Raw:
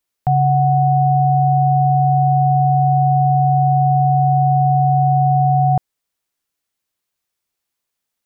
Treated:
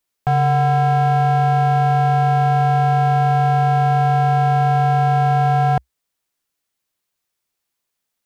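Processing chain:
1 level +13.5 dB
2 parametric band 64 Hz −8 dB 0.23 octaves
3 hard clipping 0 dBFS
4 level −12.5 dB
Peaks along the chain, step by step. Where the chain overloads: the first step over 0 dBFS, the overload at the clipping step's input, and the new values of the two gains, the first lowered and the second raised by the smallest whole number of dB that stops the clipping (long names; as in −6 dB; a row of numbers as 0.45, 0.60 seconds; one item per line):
+6.0, +6.0, 0.0, −12.5 dBFS
step 1, 6.0 dB
step 1 +7.5 dB, step 4 −6.5 dB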